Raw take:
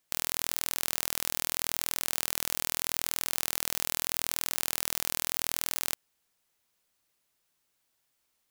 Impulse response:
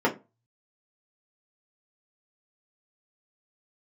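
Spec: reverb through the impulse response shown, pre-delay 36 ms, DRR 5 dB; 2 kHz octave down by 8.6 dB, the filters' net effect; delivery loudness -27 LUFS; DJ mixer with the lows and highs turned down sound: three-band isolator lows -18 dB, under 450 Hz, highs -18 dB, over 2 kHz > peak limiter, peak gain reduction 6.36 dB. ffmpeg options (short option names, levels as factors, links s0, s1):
-filter_complex "[0:a]equalizer=f=2000:t=o:g=-5,asplit=2[s0][s1];[1:a]atrim=start_sample=2205,adelay=36[s2];[s1][s2]afir=irnorm=-1:irlink=0,volume=0.1[s3];[s0][s3]amix=inputs=2:normalize=0,acrossover=split=450 2000:gain=0.126 1 0.126[s4][s5][s6];[s4][s5][s6]amix=inputs=3:normalize=0,volume=13.3,alimiter=limit=0.376:level=0:latency=1"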